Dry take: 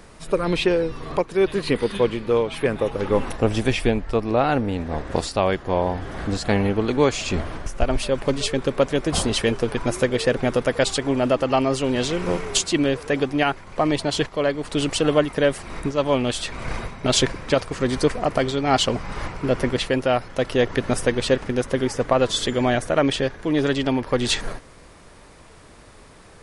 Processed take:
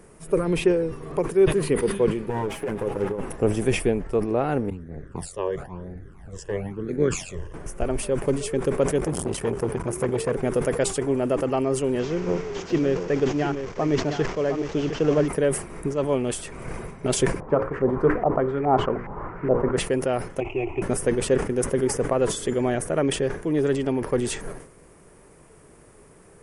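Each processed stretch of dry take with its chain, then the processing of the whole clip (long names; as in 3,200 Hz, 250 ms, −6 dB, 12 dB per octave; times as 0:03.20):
0:02.29–0:03.22: lower of the sound and its delayed copy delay 9.7 ms + high-shelf EQ 6,200 Hz −6.5 dB + compressor whose output falls as the input rises −22 dBFS, ratio −0.5
0:04.70–0:07.54: all-pass phaser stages 12, 1 Hz, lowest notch 220–1,000 Hz + amplitude modulation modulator 90 Hz, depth 40% + multiband upward and downward expander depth 70%
0:08.98–0:10.33: high-pass filter 59 Hz + low-shelf EQ 110 Hz +11.5 dB + saturating transformer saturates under 940 Hz
0:11.99–0:15.28: linear delta modulator 32 kbit/s, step −27.5 dBFS + single-tap delay 710 ms −9 dB
0:17.40–0:19.77: mains-hum notches 60/120/180/240/300/360/420/480/540 Hz + auto-filter low-pass saw up 2.4 Hz 780–2,000 Hz
0:20.40–0:20.82: variable-slope delta modulation 32 kbit/s + drawn EQ curve 110 Hz 0 dB, 210 Hz −22 dB, 340 Hz +5 dB, 500 Hz −16 dB, 760 Hz +6 dB, 1,700 Hz −23 dB, 2,500 Hz +15 dB, 4,100 Hz −29 dB, 5,800 Hz −24 dB, 11,000 Hz +3 dB
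whole clip: graphic EQ with 15 bands 160 Hz +7 dB, 400 Hz +9 dB, 4,000 Hz −11 dB, 10,000 Hz +10 dB; level that may fall only so fast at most 110 dB per second; level −7.5 dB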